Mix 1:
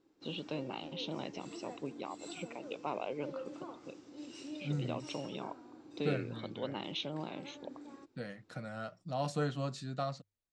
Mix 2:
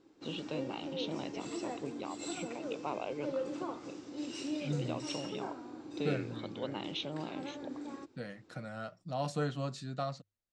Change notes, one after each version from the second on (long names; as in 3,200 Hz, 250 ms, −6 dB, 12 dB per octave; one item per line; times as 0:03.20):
background +7.5 dB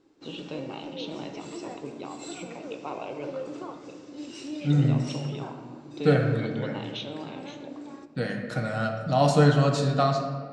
second voice +10.5 dB
reverb: on, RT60 1.8 s